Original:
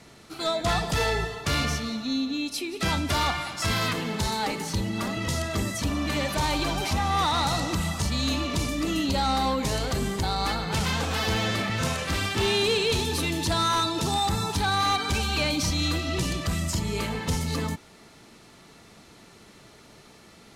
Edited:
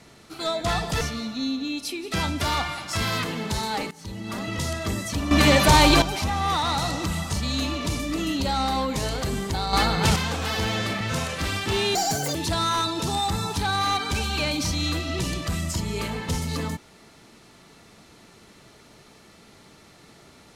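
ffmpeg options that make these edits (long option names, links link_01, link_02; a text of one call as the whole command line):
ffmpeg -i in.wav -filter_complex "[0:a]asplit=9[link_01][link_02][link_03][link_04][link_05][link_06][link_07][link_08][link_09];[link_01]atrim=end=1.012[link_10];[link_02]atrim=start=1.698:end=4.6,asetpts=PTS-STARTPTS,afade=type=out:start_time=2.898:duration=0.004:curve=hsin:silence=0.0891251[link_11];[link_03]atrim=start=4.6:end=6.002,asetpts=PTS-STARTPTS,afade=type=in:duration=0.58:silence=0.0891251[link_12];[link_04]atrim=start=5.998:end=6.712,asetpts=PTS-STARTPTS,volume=10.5dB[link_13];[link_05]atrim=start=6.708:end=10.422[link_14];[link_06]atrim=start=10.418:end=10.852,asetpts=PTS-STARTPTS,volume=6.5dB[link_15];[link_07]atrim=start=10.848:end=12.644[link_16];[link_08]atrim=start=12.64:end=13.34,asetpts=PTS-STARTPTS,asetrate=77175,aresample=44100[link_17];[link_09]atrim=start=13.336[link_18];[link_11][link_12]concat=n=2:v=0:a=1[link_19];[link_10][link_19]acrossfade=duration=0.004:curve1=hsin:curve2=hsin[link_20];[link_20][link_13]acrossfade=duration=0.004:curve1=hsin:curve2=hsin[link_21];[link_21][link_14]acrossfade=duration=0.004:curve1=hsin:curve2=hsin[link_22];[link_22][link_15]acrossfade=duration=0.004:curve1=hsin:curve2=hsin[link_23];[link_23][link_16]acrossfade=duration=0.004:curve1=hsin:curve2=hsin[link_24];[link_24][link_17]acrossfade=duration=0.004:curve1=hsin:curve2=hsin[link_25];[link_25][link_18]acrossfade=duration=0.004:curve1=hsin:curve2=hsin" out.wav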